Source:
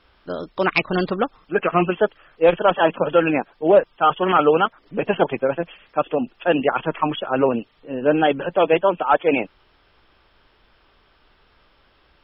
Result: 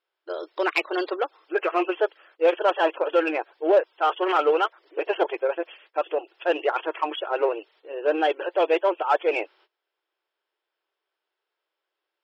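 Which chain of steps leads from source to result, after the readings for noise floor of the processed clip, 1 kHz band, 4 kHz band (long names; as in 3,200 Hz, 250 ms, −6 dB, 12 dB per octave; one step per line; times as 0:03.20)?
−85 dBFS, −4.5 dB, −3.5 dB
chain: noise gate −49 dBFS, range −22 dB
notch filter 1,200 Hz, Q 16
in parallel at −4 dB: soft clipping −18 dBFS, distortion −8 dB
on the sum: linear-phase brick-wall high-pass 310 Hz
level −6.5 dB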